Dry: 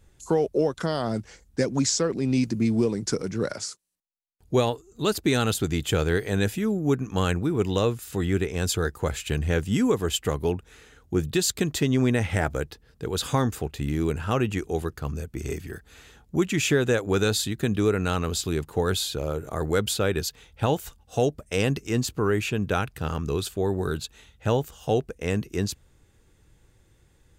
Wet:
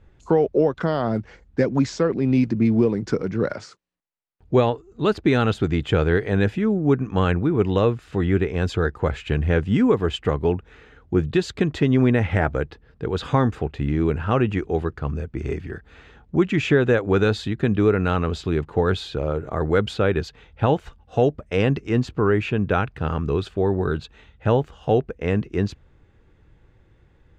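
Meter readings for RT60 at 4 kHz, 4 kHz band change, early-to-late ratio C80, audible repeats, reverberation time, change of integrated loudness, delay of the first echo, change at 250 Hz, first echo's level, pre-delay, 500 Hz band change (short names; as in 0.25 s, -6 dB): none, -3.5 dB, none, none, none, +4.0 dB, none, +4.5 dB, none, none, +4.5 dB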